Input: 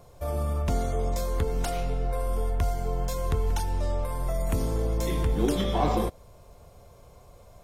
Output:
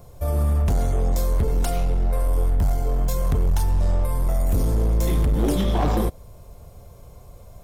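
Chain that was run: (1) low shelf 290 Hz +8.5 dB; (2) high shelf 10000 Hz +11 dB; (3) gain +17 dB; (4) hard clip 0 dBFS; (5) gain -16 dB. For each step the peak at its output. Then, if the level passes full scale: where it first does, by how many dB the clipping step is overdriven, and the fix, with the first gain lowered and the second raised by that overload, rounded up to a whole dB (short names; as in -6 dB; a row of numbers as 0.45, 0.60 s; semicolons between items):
-7.0, -7.0, +10.0, 0.0, -16.0 dBFS; step 3, 10.0 dB; step 3 +7 dB, step 5 -6 dB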